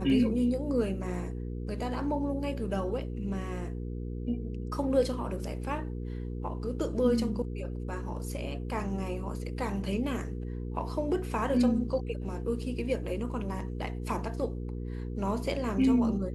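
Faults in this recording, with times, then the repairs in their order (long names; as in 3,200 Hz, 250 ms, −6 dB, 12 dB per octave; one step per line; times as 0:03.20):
mains hum 60 Hz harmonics 8 −36 dBFS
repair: hum removal 60 Hz, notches 8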